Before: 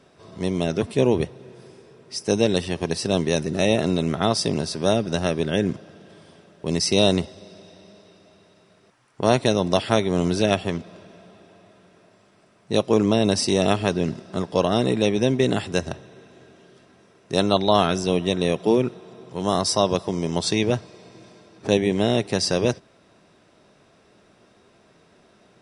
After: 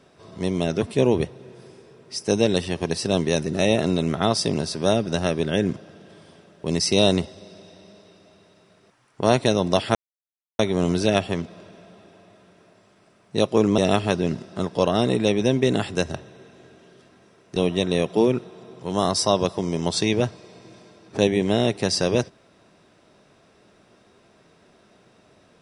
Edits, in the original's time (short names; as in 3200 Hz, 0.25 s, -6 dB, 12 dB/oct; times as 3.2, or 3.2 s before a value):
9.95 insert silence 0.64 s
13.14–13.55 cut
17.33–18.06 cut